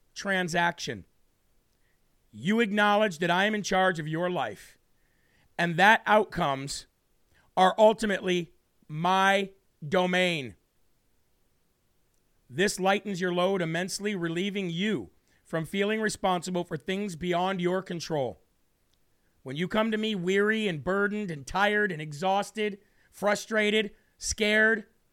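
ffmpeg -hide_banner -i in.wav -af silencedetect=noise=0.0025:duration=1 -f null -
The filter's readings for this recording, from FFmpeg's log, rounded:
silence_start: 1.03
silence_end: 2.33 | silence_duration: 1.30
silence_start: 10.54
silence_end: 12.14 | silence_duration: 1.60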